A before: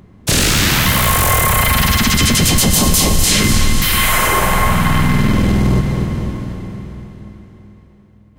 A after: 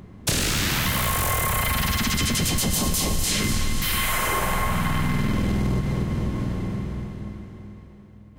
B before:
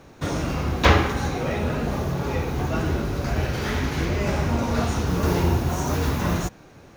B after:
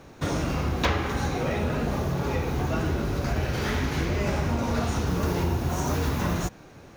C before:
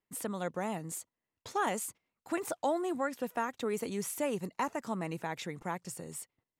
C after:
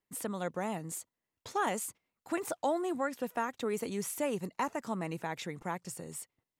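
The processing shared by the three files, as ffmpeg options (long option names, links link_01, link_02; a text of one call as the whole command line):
ffmpeg -i in.wav -af "acompressor=threshold=-22dB:ratio=4" out.wav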